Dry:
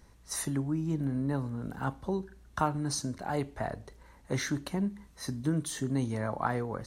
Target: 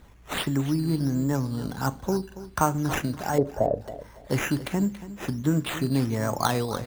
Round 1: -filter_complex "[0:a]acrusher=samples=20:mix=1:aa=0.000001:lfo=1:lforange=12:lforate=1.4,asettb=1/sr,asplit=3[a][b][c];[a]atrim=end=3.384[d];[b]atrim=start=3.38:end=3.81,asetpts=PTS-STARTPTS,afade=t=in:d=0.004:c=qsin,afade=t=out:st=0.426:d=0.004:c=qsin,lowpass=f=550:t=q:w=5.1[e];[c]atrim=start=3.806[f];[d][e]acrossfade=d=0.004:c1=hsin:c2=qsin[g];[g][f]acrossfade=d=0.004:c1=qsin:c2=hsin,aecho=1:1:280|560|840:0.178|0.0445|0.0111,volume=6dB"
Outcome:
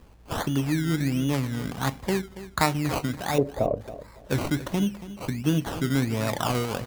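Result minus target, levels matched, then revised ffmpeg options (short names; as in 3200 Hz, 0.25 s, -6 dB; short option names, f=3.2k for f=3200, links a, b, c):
decimation with a swept rate: distortion +5 dB
-filter_complex "[0:a]acrusher=samples=8:mix=1:aa=0.000001:lfo=1:lforange=4.8:lforate=1.4,asettb=1/sr,asplit=3[a][b][c];[a]atrim=end=3.384[d];[b]atrim=start=3.38:end=3.81,asetpts=PTS-STARTPTS,afade=t=in:d=0.004:c=qsin,afade=t=out:st=0.426:d=0.004:c=qsin,lowpass=f=550:t=q:w=5.1[e];[c]atrim=start=3.806[f];[d][e]acrossfade=d=0.004:c1=hsin:c2=qsin[g];[g][f]acrossfade=d=0.004:c1=qsin:c2=hsin,aecho=1:1:280|560|840:0.178|0.0445|0.0111,volume=6dB"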